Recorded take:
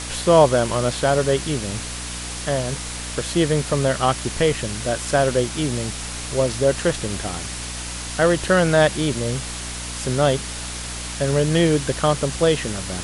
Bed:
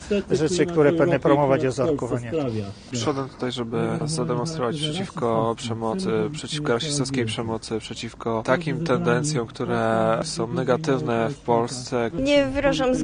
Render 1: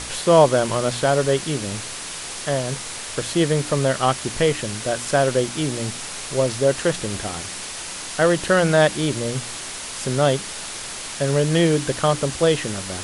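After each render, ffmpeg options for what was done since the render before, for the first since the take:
-af "bandreject=f=60:t=h:w=4,bandreject=f=120:t=h:w=4,bandreject=f=180:t=h:w=4,bandreject=f=240:t=h:w=4,bandreject=f=300:t=h:w=4"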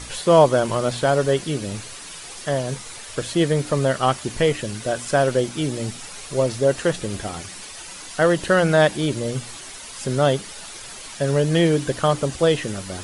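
-af "afftdn=nr=9:nf=-33"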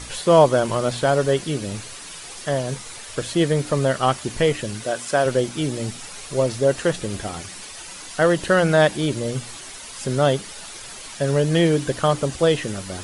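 -filter_complex "[0:a]asettb=1/sr,asplit=3[s0][s1][s2];[s0]atrim=end=4.844[s3];[s1]atrim=start=4.84:end=5.26,asetpts=PTS-STARTPTS,afade=t=in:d=0.004:c=qsin,afade=t=out:st=0.416:d=0.004:c=qsin,highpass=f=270:p=1[s4];[s2]atrim=start=5.256[s5];[s3][s4]acrossfade=d=0.004:c1=hsin:c2=qsin[s6];[s6][s5]acrossfade=d=0.004:c1=qsin:c2=hsin"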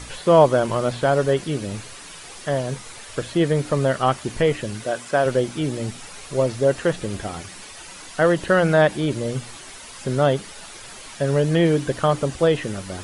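-filter_complex "[0:a]acrossover=split=2900[s0][s1];[s1]acompressor=threshold=0.0126:ratio=4:attack=1:release=60[s2];[s0][s2]amix=inputs=2:normalize=0"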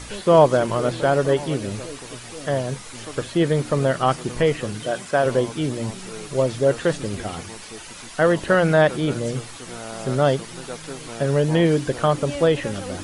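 -filter_complex "[1:a]volume=0.211[s0];[0:a][s0]amix=inputs=2:normalize=0"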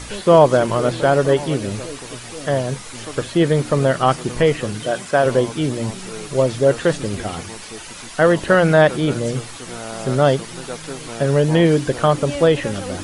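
-af "volume=1.5,alimiter=limit=0.891:level=0:latency=1"

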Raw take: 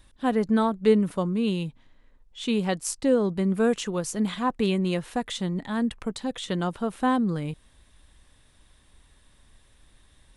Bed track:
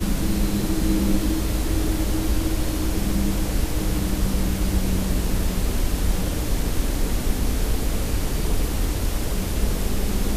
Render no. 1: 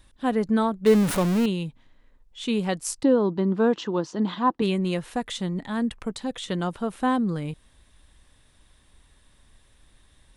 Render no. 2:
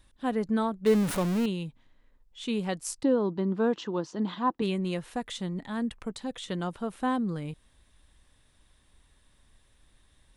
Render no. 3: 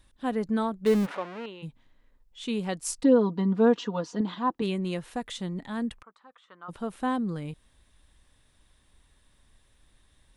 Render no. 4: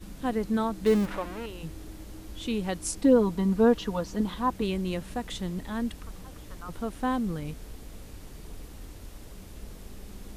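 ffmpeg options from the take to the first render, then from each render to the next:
-filter_complex "[0:a]asettb=1/sr,asplit=3[s0][s1][s2];[s0]atrim=end=0.864[s3];[s1]atrim=start=0.86:end=1.46,asetpts=PTS-STARTPTS,afade=t=in:d=0.004:c=qsin,afade=t=out:st=0.596:d=0.004:c=qsin,aeval=exprs='val(0)+0.5*0.0708*sgn(val(0))':c=same[s4];[s2]atrim=start=1.456[s5];[s3][s4]acrossfade=d=0.004:c1=hsin:c2=qsin[s6];[s6][s5]acrossfade=d=0.004:c1=qsin:c2=hsin,asettb=1/sr,asplit=3[s7][s8][s9];[s7]atrim=end=3.034[s10];[s8]atrim=start=3.03:end=4.62,asetpts=PTS-STARTPTS,afade=t=in:d=0.004:c=qsin,afade=t=out:st=1.586:d=0.004:c=qsin,highpass=110,equalizer=f=320:t=q:w=4:g=10,equalizer=f=940:t=q:w=4:g=8,equalizer=f=2300:t=q:w=4:g=-9,lowpass=f=5000:w=0.5412,lowpass=f=5000:w=1.3066[s11];[s9]atrim=start=4.616[s12];[s10][s11]acrossfade=d=0.004:c1=hsin:c2=qsin[s13];[s13][s12]acrossfade=d=0.004:c1=qsin:c2=hsin"
-af "volume=0.562"
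-filter_complex "[0:a]asplit=3[s0][s1][s2];[s0]afade=t=out:st=1.05:d=0.02[s3];[s1]highpass=550,lowpass=2400,afade=t=in:st=1.05:d=0.02,afade=t=out:st=1.62:d=0.02[s4];[s2]afade=t=in:st=1.62:d=0.02[s5];[s3][s4][s5]amix=inputs=3:normalize=0,asettb=1/sr,asplit=3[s6][s7][s8];[s6]atrim=end=2.824[s9];[s7]atrim=start=2.82:end=4.21,asetpts=PTS-STARTPTS,afade=t=in:d=0.004:c=qsin,afade=t=out:st=1.386:d=0.004:c=qsin,aecho=1:1:4.2:0.94,atrim=end_sample=61299[s10];[s8]atrim=start=4.206[s11];[s9][s10]acrossfade=d=0.004:c1=hsin:c2=qsin[s12];[s12][s11]acrossfade=d=0.004:c1=qsin:c2=hsin,asplit=3[s13][s14][s15];[s13]afade=t=out:st=6.01:d=0.02[s16];[s14]bandpass=f=1200:t=q:w=4.6,afade=t=in:st=6.01:d=0.02,afade=t=out:st=6.68:d=0.02[s17];[s15]afade=t=in:st=6.68:d=0.02[s18];[s16][s17][s18]amix=inputs=3:normalize=0"
-filter_complex "[1:a]volume=0.0944[s0];[0:a][s0]amix=inputs=2:normalize=0"

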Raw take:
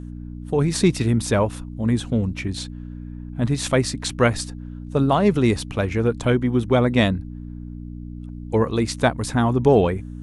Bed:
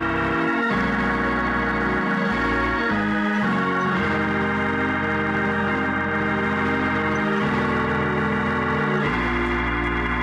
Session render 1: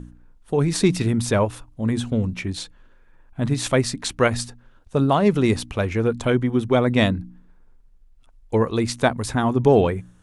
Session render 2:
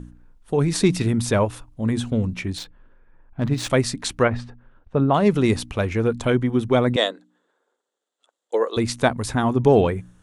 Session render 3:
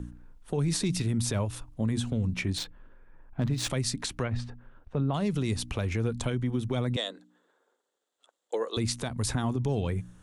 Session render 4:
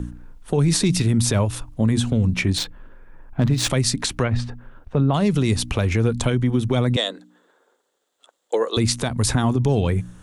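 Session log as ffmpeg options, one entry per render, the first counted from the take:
-af "bandreject=f=60:t=h:w=4,bandreject=f=120:t=h:w=4,bandreject=f=180:t=h:w=4,bandreject=f=240:t=h:w=4,bandreject=f=300:t=h:w=4"
-filter_complex "[0:a]asettb=1/sr,asplit=3[s0][s1][s2];[s0]atrim=end=2.584[s3];[s1]atrim=start=2.58:end=3.7,asetpts=PTS-STARTPTS,afade=t=in:d=0.004:c=qsin,afade=t=out:st=1.116:d=0.004:c=qsin,adynamicsmooth=sensitivity=7:basefreq=2300[s4];[s2]atrim=start=3.696[s5];[s3][s4]acrossfade=d=0.004:c1=hsin:c2=qsin[s6];[s6][s5]acrossfade=d=0.004:c1=qsin:c2=hsin,asplit=3[s7][s8][s9];[s7]afade=t=out:st=4.22:d=0.02[s10];[s8]lowpass=2100,afade=t=in:st=4.22:d=0.02,afade=t=out:st=5.13:d=0.02[s11];[s9]afade=t=in:st=5.13:d=0.02[s12];[s10][s11][s12]amix=inputs=3:normalize=0,asettb=1/sr,asplit=3[s13][s14][s15];[s13]atrim=end=6.964[s16];[s14]atrim=start=6.96:end=8.77,asetpts=PTS-STARTPTS,afade=t=in:d=0.004:c=qsin,afade=t=out:st=1.806:d=0.004:c=qsin,highpass=f=390:w=0.5412,highpass=f=390:w=1.3066,equalizer=f=510:t=q:w=4:g=4,equalizer=f=920:t=q:w=4:g=-3,equalizer=f=2400:t=q:w=4:g=-10,equalizer=f=3500:t=q:w=4:g=7,equalizer=f=5200:t=q:w=4:g=-6,equalizer=f=7400:t=q:w=4:g=7,lowpass=f=9000:w=0.5412,lowpass=f=9000:w=1.3066[s17];[s15]atrim=start=8.766[s18];[s16][s17]acrossfade=d=0.004:c1=hsin:c2=qsin[s19];[s19][s18]acrossfade=d=0.004:c1=qsin:c2=hsin"
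-filter_complex "[0:a]acrossover=split=180|3000[s0][s1][s2];[s1]acompressor=threshold=0.0282:ratio=2.5[s3];[s0][s3][s2]amix=inputs=3:normalize=0,alimiter=limit=0.106:level=0:latency=1:release=144"
-af "volume=2.99"

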